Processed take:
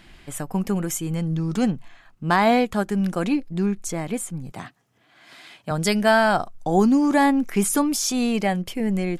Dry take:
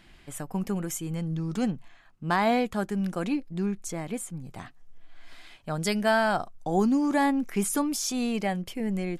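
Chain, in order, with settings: 4.52–5.71 s: high-pass 110 Hz 24 dB/octave; endings held to a fixed fall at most 520 dB/s; trim +6 dB

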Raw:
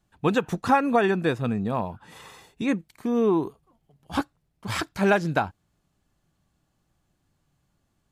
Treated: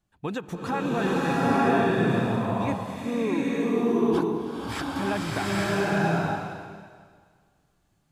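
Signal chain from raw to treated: peak limiter -15 dBFS, peak gain reduction 5.5 dB; swelling reverb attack 890 ms, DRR -8 dB; trim -6 dB

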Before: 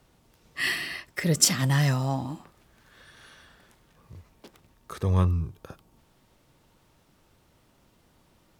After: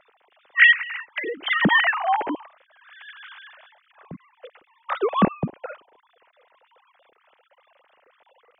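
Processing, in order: formants replaced by sine waves; 0.72–1.47 s: compression 12:1, threshold -32 dBFS, peak gain reduction 15.5 dB; trim +5.5 dB

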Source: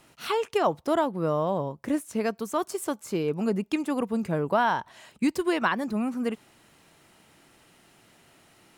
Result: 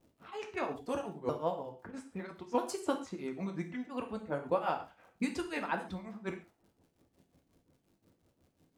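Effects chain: sawtooth pitch modulation -4 st, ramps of 1290 ms; harmonic-percussive split harmonic -10 dB; level-controlled noise filter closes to 450 Hz, open at -28.5 dBFS; crackle 240 per s -59 dBFS; tremolo triangle 5.6 Hz, depth 100%; gated-style reverb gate 160 ms falling, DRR 4 dB

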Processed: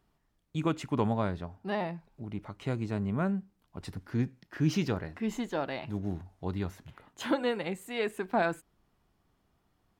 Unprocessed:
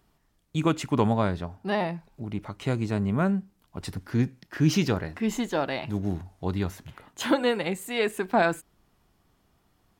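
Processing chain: treble shelf 4.4 kHz -5.5 dB; trim -5.5 dB

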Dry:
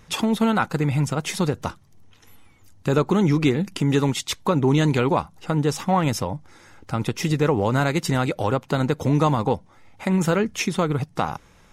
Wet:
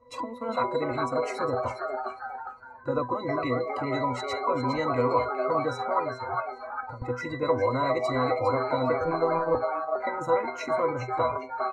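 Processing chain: 0.48–1.37 s: comb 4.3 ms, depth 80%; added noise brown -48 dBFS; pitch-class resonator B, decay 0.22 s; 5.99–7.02 s: compression 10:1, threshold -44 dBFS, peak gain reduction 18 dB; graphic EQ 125/500/1000/2000/4000/8000 Hz -7/+8/+9/-4/-6/+6 dB; 9.05–9.55 s: robot voice 165 Hz; peaking EQ 160 Hz -13.5 dB 0.9 oct; frequency-shifting echo 406 ms, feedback 39%, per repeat +140 Hz, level -7.5 dB; spectral noise reduction 14 dB; spectrum-flattening compressor 2:1

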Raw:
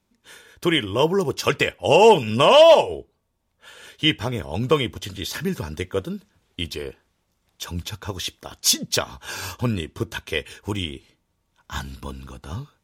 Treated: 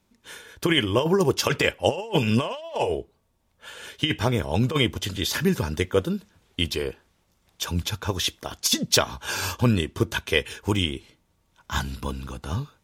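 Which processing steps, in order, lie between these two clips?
compressor with a negative ratio -20 dBFS, ratio -0.5

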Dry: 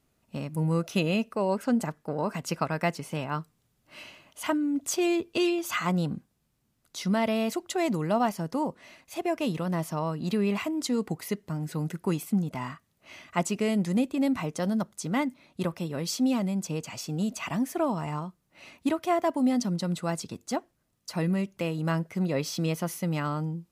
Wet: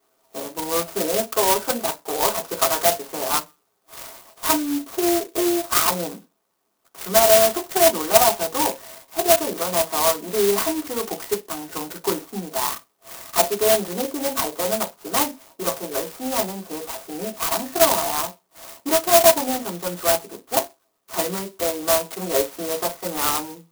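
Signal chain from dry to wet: high-pass 560 Hz 12 dB/octave; in parallel at -11 dB: sine folder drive 10 dB, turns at -13 dBFS; on the sum: distance through air 420 m; reverberation RT60 0.20 s, pre-delay 3 ms, DRR -5.5 dB; sampling jitter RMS 0.14 ms; trim -2 dB

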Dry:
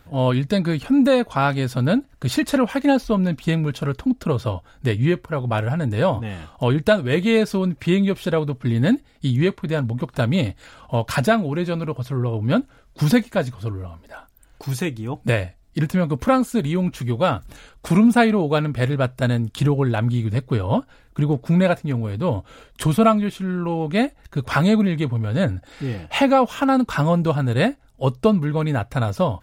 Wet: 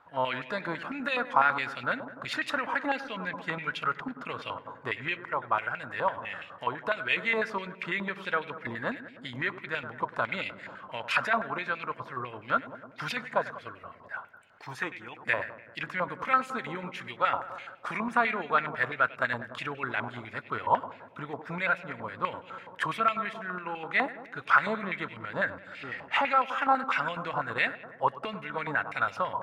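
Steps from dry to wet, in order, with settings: 5.21–6.97 s: compression 2.5:1, threshold -22 dBFS, peak gain reduction 8 dB; peak limiter -11.5 dBFS, peak gain reduction 8 dB; filtered feedback delay 98 ms, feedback 77%, low-pass 1.7 kHz, level -12 dB; step-sequenced band-pass 12 Hz 1–2.5 kHz; trim +7.5 dB

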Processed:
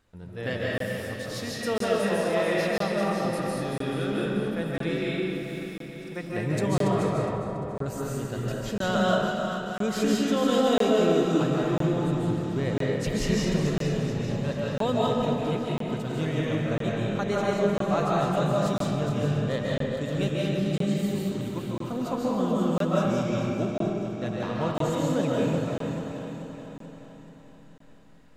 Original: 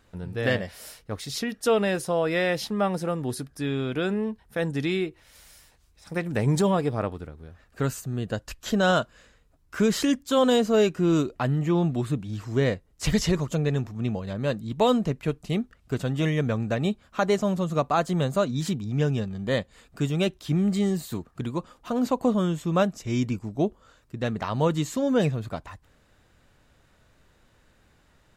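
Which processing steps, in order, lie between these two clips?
backward echo that repeats 217 ms, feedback 72%, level -7.5 dB; 7.12–7.86 s: low-pass 1.4 kHz 24 dB/octave; on a send: multi-head delay 347 ms, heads first and second, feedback 47%, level -21.5 dB; on the sum: algorithmic reverb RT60 1.5 s, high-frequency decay 0.65×, pre-delay 110 ms, DRR -4.5 dB; crackling interface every 1.00 s, samples 1024, zero, from 0.78 s; trim -7.5 dB

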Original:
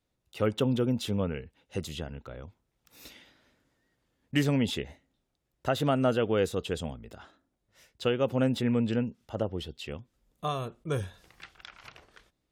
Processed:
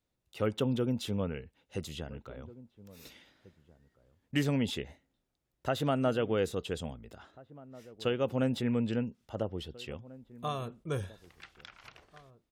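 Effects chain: echo from a far wall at 290 m, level -20 dB; trim -3.5 dB

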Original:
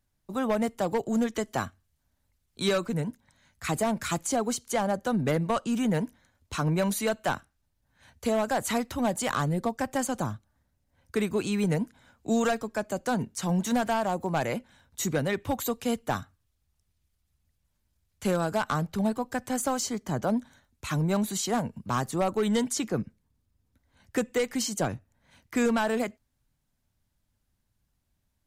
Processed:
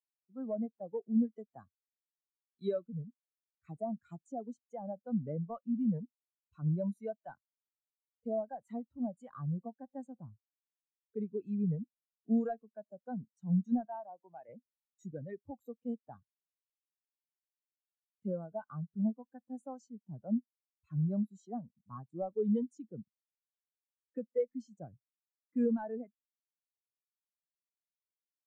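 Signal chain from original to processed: 13.85–14.49 s: high-pass 440 Hz 6 dB/octave; spectral contrast expander 2.5:1; trim -6.5 dB

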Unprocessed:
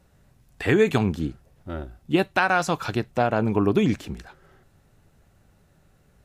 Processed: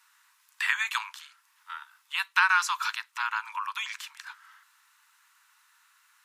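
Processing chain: in parallel at +1 dB: compression, threshold -35 dBFS, peak gain reduction 19.5 dB; on the sum: steep high-pass 930 Hz 96 dB/octave

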